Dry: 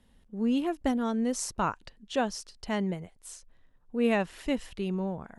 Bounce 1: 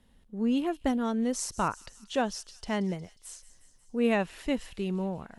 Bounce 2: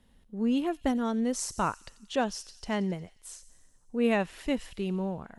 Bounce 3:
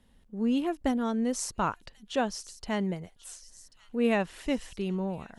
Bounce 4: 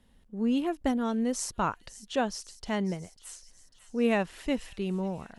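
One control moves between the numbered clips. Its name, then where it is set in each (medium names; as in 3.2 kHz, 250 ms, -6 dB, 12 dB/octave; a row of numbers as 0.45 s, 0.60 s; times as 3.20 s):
feedback echo behind a high-pass, time: 180 ms, 89 ms, 1088 ms, 546 ms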